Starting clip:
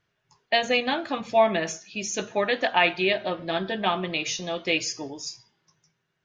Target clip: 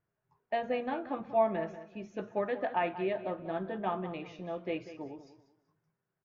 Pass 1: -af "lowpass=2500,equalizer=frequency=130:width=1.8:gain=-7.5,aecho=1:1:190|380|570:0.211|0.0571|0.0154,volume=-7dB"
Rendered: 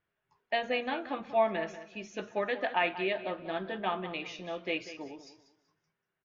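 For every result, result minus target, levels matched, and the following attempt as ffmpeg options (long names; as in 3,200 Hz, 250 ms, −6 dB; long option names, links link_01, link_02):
2,000 Hz band +6.0 dB; 125 Hz band −4.5 dB
-af "lowpass=1200,equalizer=frequency=130:width=1.8:gain=-7.5,aecho=1:1:190|380|570:0.211|0.0571|0.0154,volume=-7dB"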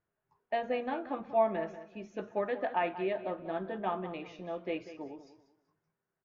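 125 Hz band −3.0 dB
-af "lowpass=1200,aecho=1:1:190|380|570:0.211|0.0571|0.0154,volume=-7dB"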